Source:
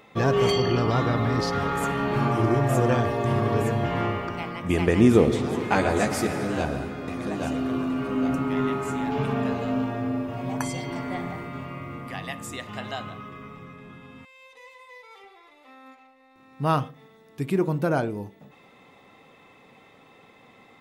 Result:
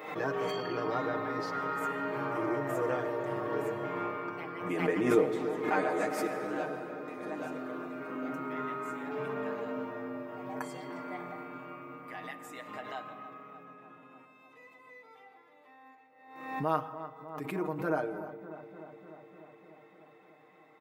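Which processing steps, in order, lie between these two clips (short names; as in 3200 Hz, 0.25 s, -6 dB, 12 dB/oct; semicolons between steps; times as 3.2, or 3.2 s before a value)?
HPF 320 Hz 12 dB/oct; band shelf 5400 Hz -8.5 dB 2.3 oct; comb 6.5 ms, depth 81%; darkening echo 0.299 s, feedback 75%, level -12.5 dB; on a send at -16 dB: reverb RT60 1.1 s, pre-delay 88 ms; on the sum: backwards sustainer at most 64 dB/s; gain -9 dB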